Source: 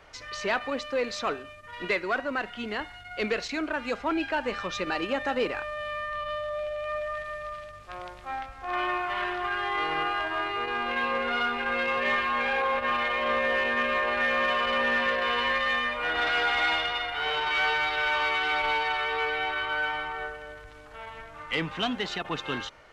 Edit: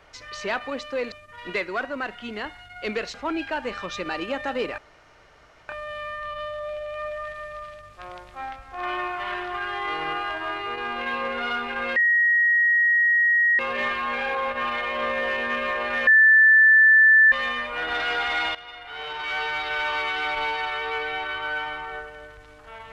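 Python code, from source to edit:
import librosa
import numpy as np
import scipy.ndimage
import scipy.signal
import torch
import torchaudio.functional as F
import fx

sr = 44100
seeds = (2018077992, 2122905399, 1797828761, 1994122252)

y = fx.edit(x, sr, fx.cut(start_s=1.12, length_s=0.35),
    fx.cut(start_s=3.49, length_s=0.46),
    fx.insert_room_tone(at_s=5.59, length_s=0.91),
    fx.insert_tone(at_s=11.86, length_s=1.63, hz=1890.0, db=-16.0),
    fx.bleep(start_s=14.34, length_s=1.25, hz=1760.0, db=-11.0),
    fx.fade_in_from(start_s=16.82, length_s=1.18, floor_db=-14.5), tone=tone)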